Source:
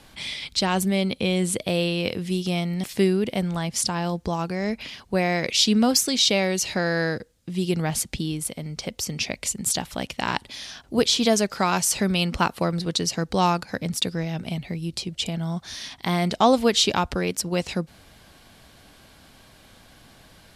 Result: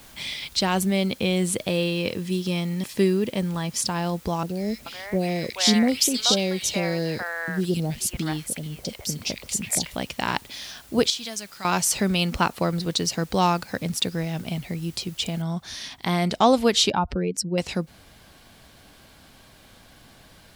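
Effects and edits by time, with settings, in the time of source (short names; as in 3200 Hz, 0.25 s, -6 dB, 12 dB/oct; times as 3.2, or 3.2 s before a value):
1.69–3.89 notch comb 720 Hz
4.43–9.96 three bands offset in time lows, highs, mids 60/430 ms, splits 710/2500 Hz
11.1–11.65 passive tone stack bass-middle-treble 5-5-5
15.42 noise floor step -51 dB -67 dB
16.9–17.58 spectral contrast raised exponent 1.8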